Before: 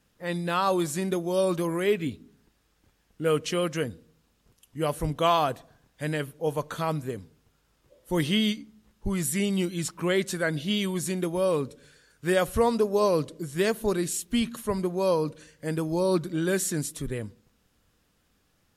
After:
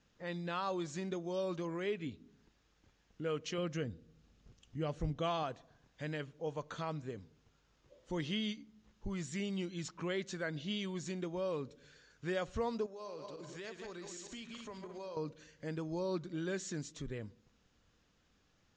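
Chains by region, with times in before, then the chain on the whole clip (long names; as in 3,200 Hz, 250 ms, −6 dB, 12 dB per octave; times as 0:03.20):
0:03.58–0:05.43: low-shelf EQ 270 Hz +8.5 dB + notch filter 980 Hz, Q 9.6
0:12.86–0:15.17: feedback delay that plays each chunk backwards 101 ms, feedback 48%, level −7 dB + downward compressor, threshold −31 dBFS + low-shelf EQ 320 Hz −11.5 dB
whole clip: elliptic low-pass filter 6,800 Hz, stop band 50 dB; downward compressor 1.5 to 1, threshold −47 dBFS; level −3 dB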